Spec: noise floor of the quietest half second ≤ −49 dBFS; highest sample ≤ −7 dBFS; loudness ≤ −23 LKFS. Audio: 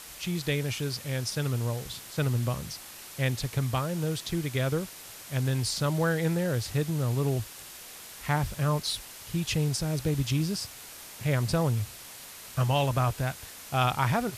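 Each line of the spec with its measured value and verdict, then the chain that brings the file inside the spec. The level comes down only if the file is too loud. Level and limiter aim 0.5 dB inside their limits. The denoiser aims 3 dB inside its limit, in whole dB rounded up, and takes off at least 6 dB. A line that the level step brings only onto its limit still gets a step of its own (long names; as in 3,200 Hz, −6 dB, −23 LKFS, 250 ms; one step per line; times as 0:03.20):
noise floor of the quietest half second −45 dBFS: out of spec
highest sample −11.5 dBFS: in spec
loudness −29.5 LKFS: in spec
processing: broadband denoise 7 dB, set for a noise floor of −45 dBFS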